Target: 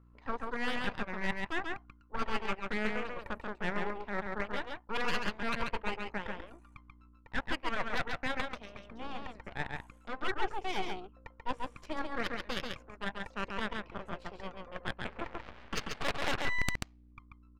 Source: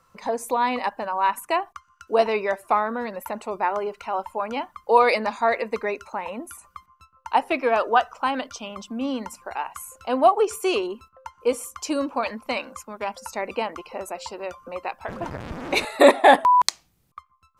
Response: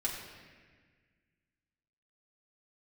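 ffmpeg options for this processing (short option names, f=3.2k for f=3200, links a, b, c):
-af "bass=f=250:g=-10,treble=f=4k:g=-6,aeval=exprs='val(0)+0.00562*(sin(2*PI*60*n/s)+sin(2*PI*2*60*n/s)/2+sin(2*PI*3*60*n/s)/3+sin(2*PI*4*60*n/s)/4+sin(2*PI*5*60*n/s)/5)':c=same,aeval=exprs='0.841*(cos(1*acos(clip(val(0)/0.841,-1,1)))-cos(1*PI/2))+0.335*(cos(3*acos(clip(val(0)/0.841,-1,1)))-cos(3*PI/2))+0.15*(cos(8*acos(clip(val(0)/0.841,-1,1)))-cos(8*PI/2))':c=same,areverse,acompressor=threshold=-29dB:ratio=8,areverse,aecho=1:1:137:0.668,adynamicsmooth=sensitivity=5.5:basefreq=3.6k"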